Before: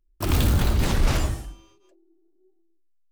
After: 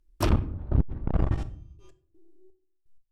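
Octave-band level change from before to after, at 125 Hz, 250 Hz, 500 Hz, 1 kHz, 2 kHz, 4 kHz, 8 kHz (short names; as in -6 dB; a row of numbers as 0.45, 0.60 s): -3.5 dB, -3.0 dB, -3.5 dB, -5.0 dB, -10.5 dB, under -10 dB, under -10 dB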